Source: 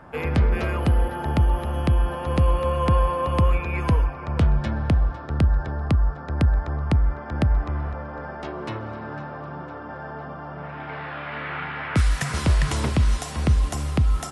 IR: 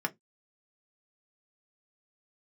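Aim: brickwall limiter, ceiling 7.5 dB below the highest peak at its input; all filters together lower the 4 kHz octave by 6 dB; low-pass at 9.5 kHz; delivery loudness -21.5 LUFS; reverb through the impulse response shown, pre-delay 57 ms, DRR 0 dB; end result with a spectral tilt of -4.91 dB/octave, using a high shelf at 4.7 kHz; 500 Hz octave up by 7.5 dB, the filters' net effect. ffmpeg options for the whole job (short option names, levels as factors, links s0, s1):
-filter_complex "[0:a]lowpass=9500,equalizer=f=500:t=o:g=8.5,equalizer=f=4000:t=o:g=-5,highshelf=f=4700:g=-7,alimiter=limit=0.178:level=0:latency=1,asplit=2[s0][s1];[1:a]atrim=start_sample=2205,adelay=57[s2];[s1][s2]afir=irnorm=-1:irlink=0,volume=0.501[s3];[s0][s3]amix=inputs=2:normalize=0,volume=1.41"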